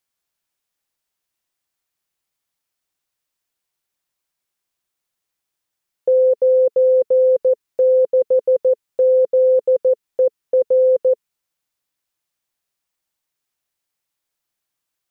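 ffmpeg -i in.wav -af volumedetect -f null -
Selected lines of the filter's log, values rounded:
mean_volume: -20.1 dB
max_volume: -9.1 dB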